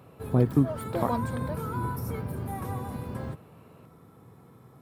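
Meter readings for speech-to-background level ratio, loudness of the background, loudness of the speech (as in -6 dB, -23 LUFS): 5.5 dB, -33.5 LUFS, -28.0 LUFS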